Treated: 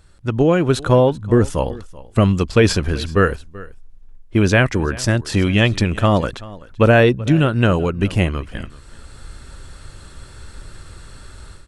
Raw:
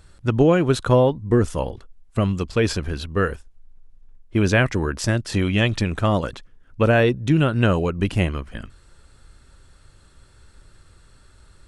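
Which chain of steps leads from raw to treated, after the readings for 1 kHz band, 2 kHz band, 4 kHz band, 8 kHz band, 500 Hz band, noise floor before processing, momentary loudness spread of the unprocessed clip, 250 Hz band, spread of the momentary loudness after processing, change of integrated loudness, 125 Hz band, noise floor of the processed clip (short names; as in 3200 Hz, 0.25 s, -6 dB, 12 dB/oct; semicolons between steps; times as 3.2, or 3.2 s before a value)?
+4.0 dB, +4.0 dB, +4.5 dB, +4.5 dB, +3.5 dB, -53 dBFS, 11 LU, +3.5 dB, 12 LU, +4.0 dB, +4.0 dB, -43 dBFS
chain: AGC gain up to 14 dB; on a send: echo 0.383 s -20 dB; on the sum: gain -1 dB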